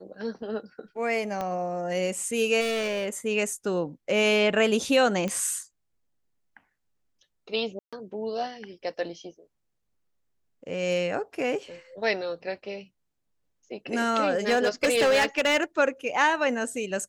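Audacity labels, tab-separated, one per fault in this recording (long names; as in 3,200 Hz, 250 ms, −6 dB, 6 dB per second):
1.410000	1.410000	click −18 dBFS
2.600000	3.100000	clipping −25 dBFS
5.280000	5.280000	click −17 dBFS
7.790000	7.930000	drop-out 136 ms
14.300000	15.640000	clipping −17.5 dBFS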